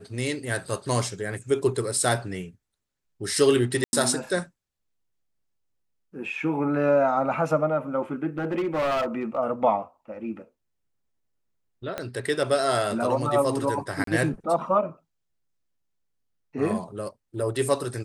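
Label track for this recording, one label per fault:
3.840000	3.930000	dropout 91 ms
8.380000	9.380000	clipped -22 dBFS
11.980000	11.980000	pop -15 dBFS
14.040000	14.070000	dropout 33 ms

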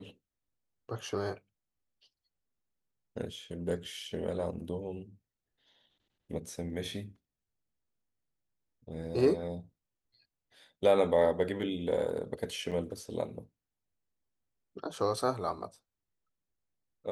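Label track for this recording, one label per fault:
12.710000	12.720000	dropout 6.9 ms

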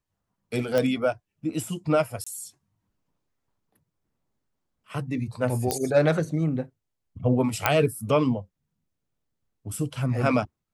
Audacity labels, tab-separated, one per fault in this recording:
0.780000	0.780000	pop -11 dBFS
2.240000	2.270000	dropout 25 ms
5.710000	5.710000	pop -9 dBFS
7.660000	7.660000	pop -4 dBFS

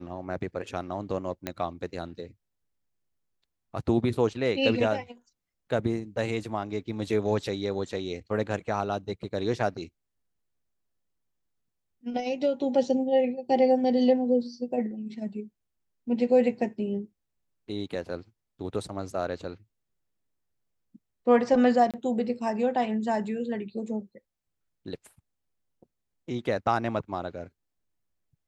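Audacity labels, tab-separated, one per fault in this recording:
1.470000	1.470000	pop -16 dBFS
21.910000	21.940000	dropout 27 ms

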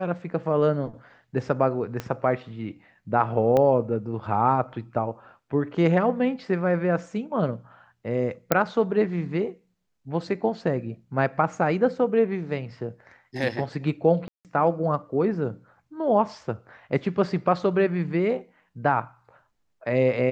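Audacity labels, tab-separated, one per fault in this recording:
2.000000	2.000000	pop -16 dBFS
3.570000	3.570000	pop -12 dBFS
8.520000	8.520000	pop -4 dBFS
14.280000	14.450000	dropout 168 ms

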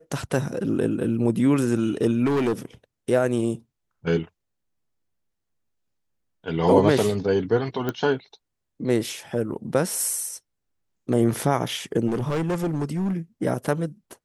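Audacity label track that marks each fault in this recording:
2.250000	2.530000	clipped -19 dBFS
7.890000	7.890000	pop -13 dBFS
12.070000	13.130000	clipped -21 dBFS

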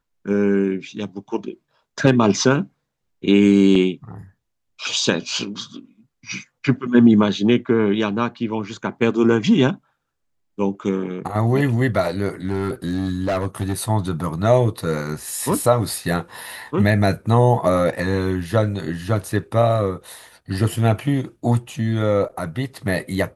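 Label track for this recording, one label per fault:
3.750000	3.750000	dropout 4.2 ms
12.450000	13.730000	clipped -17 dBFS

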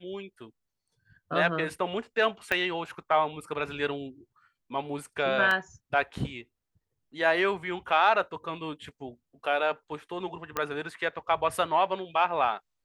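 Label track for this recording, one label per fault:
2.520000	2.520000	pop -13 dBFS
5.510000	5.510000	dropout 2.5 ms
10.570000	10.570000	pop -14 dBFS

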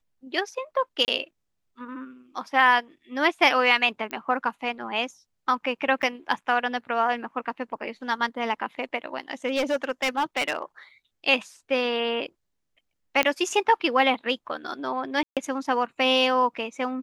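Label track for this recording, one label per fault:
1.050000	1.080000	dropout 29 ms
4.110000	4.110000	pop -18 dBFS
6.020000	6.030000	dropout 9.5 ms
9.470000	10.620000	clipped -20 dBFS
13.230000	13.230000	pop -8 dBFS
15.230000	15.370000	dropout 137 ms

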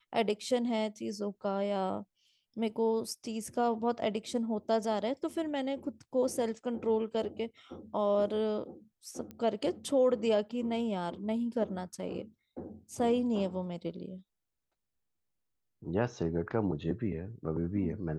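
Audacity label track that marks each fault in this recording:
9.310000	9.310000	pop -30 dBFS

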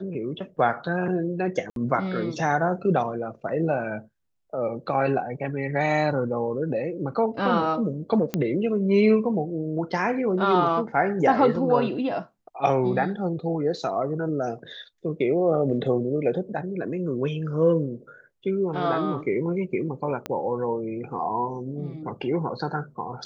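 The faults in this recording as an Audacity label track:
1.700000	1.760000	dropout 62 ms
8.340000	8.340000	pop -12 dBFS
20.260000	20.260000	pop -15 dBFS

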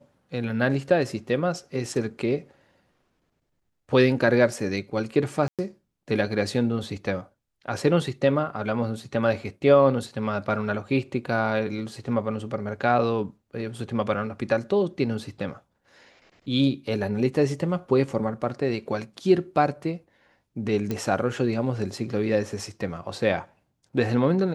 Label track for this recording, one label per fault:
5.480000	5.590000	dropout 107 ms
20.910000	20.910000	pop -15 dBFS

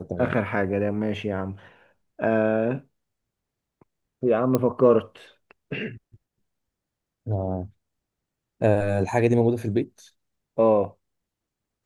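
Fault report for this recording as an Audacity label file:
4.550000	4.550000	pop -9 dBFS

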